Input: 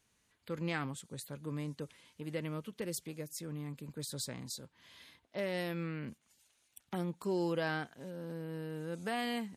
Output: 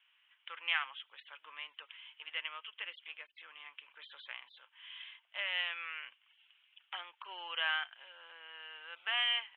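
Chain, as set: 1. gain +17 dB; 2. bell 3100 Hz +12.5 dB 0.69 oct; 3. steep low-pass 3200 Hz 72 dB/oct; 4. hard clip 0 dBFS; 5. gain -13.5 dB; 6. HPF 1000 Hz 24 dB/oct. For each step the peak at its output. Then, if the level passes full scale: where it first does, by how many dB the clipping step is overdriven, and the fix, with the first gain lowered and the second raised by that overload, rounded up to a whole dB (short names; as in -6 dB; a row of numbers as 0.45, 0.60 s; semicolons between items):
-4.5, -1.0, -2.5, -2.5, -16.0, -17.5 dBFS; no overload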